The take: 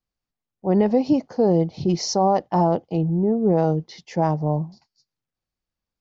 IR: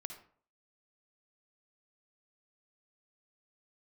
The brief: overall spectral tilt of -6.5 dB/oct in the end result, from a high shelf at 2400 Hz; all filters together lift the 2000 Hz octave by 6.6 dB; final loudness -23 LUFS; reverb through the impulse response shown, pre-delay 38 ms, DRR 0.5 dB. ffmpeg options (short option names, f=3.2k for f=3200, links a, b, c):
-filter_complex "[0:a]equalizer=f=2k:t=o:g=6,highshelf=f=2.4k:g=4.5,asplit=2[a][b];[1:a]atrim=start_sample=2205,adelay=38[c];[b][c]afir=irnorm=-1:irlink=0,volume=2.5dB[d];[a][d]amix=inputs=2:normalize=0,volume=-5dB"